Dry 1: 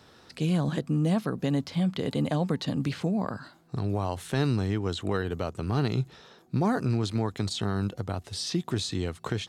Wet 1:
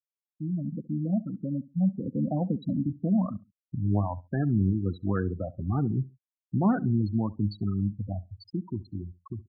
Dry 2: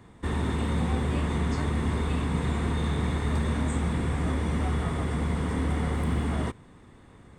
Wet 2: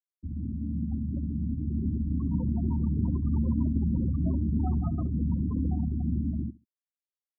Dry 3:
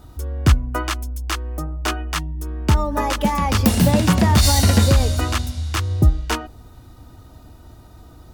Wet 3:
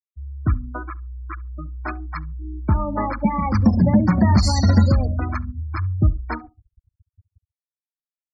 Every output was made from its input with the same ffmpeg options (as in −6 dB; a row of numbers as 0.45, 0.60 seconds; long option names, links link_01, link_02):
-filter_complex "[0:a]adynamicequalizer=threshold=0.0158:dfrequency=220:dqfactor=3.5:tfrequency=220:tqfactor=3.5:attack=5:release=100:ratio=0.375:range=3:mode=boostabove:tftype=bell,asuperstop=centerf=3100:order=8:qfactor=2.2,equalizer=frequency=430:width_type=o:width=0.26:gain=-9,adynamicsmooth=sensitivity=3:basefreq=6100,flanger=delay=9.6:depth=1.3:regen=74:speed=2:shape=sinusoidal,dynaudnorm=framelen=430:gausssize=9:maxgain=5.5dB,acrusher=bits=11:mix=0:aa=0.000001,afftfilt=real='re*gte(hypot(re,im),0.0891)':imag='im*gte(hypot(re,im),0.0891)':win_size=1024:overlap=0.75,asplit=2[link_01][link_02];[link_02]adelay=68,lowpass=frequency=960:poles=1,volume=-19dB,asplit=2[link_03][link_04];[link_04]adelay=68,lowpass=frequency=960:poles=1,volume=0.24[link_05];[link_03][link_05]amix=inputs=2:normalize=0[link_06];[link_01][link_06]amix=inputs=2:normalize=0,volume=-1dB"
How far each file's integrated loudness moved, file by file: 0.0, −1.0, −1.0 LU